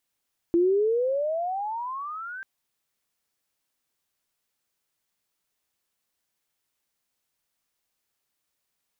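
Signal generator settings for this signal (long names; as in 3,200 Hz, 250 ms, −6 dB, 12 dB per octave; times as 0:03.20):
pitch glide with a swell sine, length 1.89 s, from 334 Hz, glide +27 semitones, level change −17.5 dB, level −17 dB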